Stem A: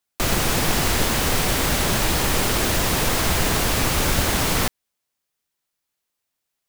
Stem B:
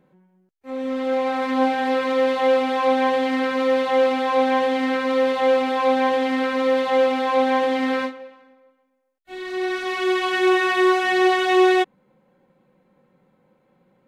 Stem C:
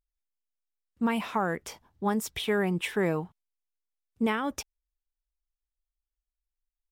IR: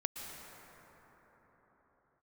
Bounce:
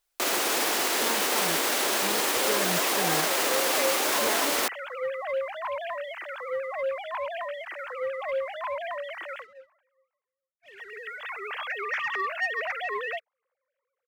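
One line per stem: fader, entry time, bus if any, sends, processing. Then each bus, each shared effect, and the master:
+2.0 dB, 0.00 s, no send, high-pass 320 Hz 24 dB/octave; peak limiter -18.5 dBFS, peak gain reduction 7.5 dB
-8.5 dB, 1.35 s, no send, formants replaced by sine waves; high-pass 940 Hz 12 dB/octave; waveshaping leveller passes 1
-8.0 dB, 0.00 s, no send, comb 6.7 ms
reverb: none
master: none

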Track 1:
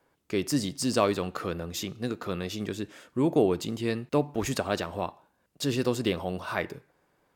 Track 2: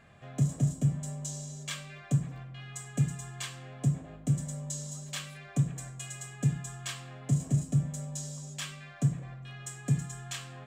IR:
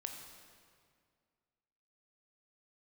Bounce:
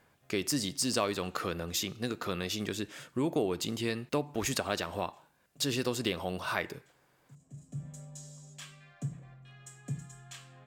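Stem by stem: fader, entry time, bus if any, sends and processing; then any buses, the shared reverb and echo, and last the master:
+1.5 dB, 0.00 s, no send, tilt shelf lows -3.5 dB, about 1.3 kHz
-9.0 dB, 0.00 s, no send, auto duck -24 dB, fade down 0.55 s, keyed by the first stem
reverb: none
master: compression 2:1, threshold -30 dBFS, peak gain reduction 7 dB

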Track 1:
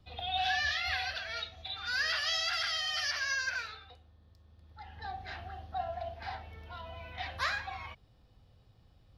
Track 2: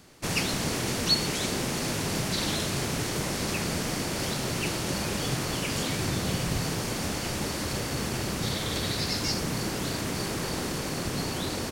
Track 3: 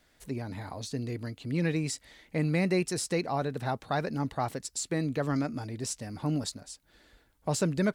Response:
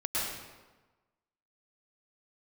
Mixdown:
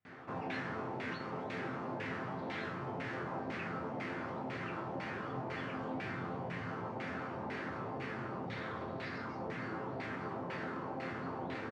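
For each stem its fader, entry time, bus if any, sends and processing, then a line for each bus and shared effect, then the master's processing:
-11.5 dB, 0.00 s, no send, none
-4.5 dB, 0.05 s, no send, level flattener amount 50%
-18.0 dB, 0.00 s, no send, none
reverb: none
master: high-pass 130 Hz 12 dB/octave; LFO low-pass saw down 2 Hz 780–2200 Hz; chord resonator F2 major, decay 0.24 s

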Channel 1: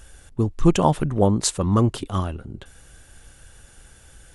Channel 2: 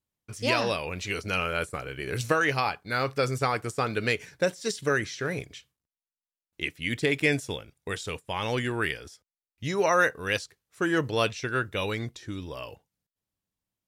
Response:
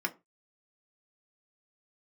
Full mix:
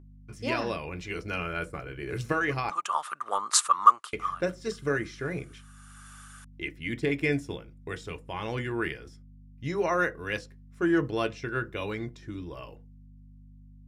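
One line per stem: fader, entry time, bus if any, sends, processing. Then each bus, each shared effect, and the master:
-4.0 dB, 2.10 s, no send, resonant high-pass 1.2 kHz, resonance Q 11; treble shelf 3.8 kHz +5.5 dB; auto duck -13 dB, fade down 0.30 s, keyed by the second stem
-8.5 dB, 0.00 s, muted 2.70–4.13 s, send -5.5 dB, tilt EQ -2 dB/octave; hum 50 Hz, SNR 14 dB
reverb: on, RT60 0.25 s, pre-delay 3 ms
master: none

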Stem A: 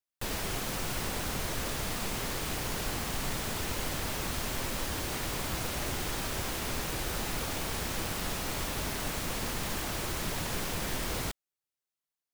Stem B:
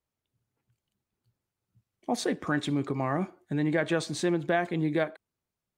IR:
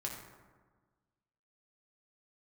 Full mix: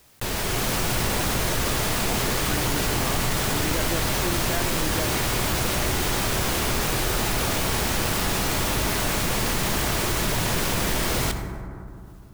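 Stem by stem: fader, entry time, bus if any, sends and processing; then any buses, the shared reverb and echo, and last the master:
-2.5 dB, 0.00 s, send -4.5 dB, level rider gain up to 7.5 dB
-6.5 dB, 0.00 s, no send, none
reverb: on, RT60 1.4 s, pre-delay 4 ms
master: level flattener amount 50%

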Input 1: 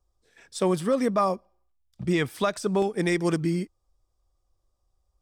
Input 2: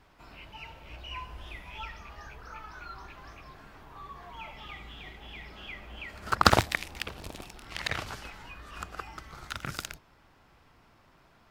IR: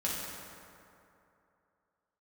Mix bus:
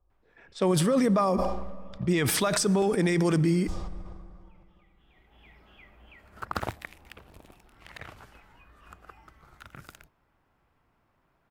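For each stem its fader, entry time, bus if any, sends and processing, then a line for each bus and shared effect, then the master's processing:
+1.0 dB, 0.00 s, send -23.5 dB, level-controlled noise filter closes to 1.7 kHz, open at -24.5 dBFS; decay stretcher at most 31 dB/s
-9.0 dB, 0.10 s, no send, peaking EQ 5 kHz -9 dB 1.6 oct; auto duck -15 dB, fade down 0.50 s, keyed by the first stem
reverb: on, RT60 2.8 s, pre-delay 3 ms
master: peak limiter -15.5 dBFS, peak gain reduction 6.5 dB

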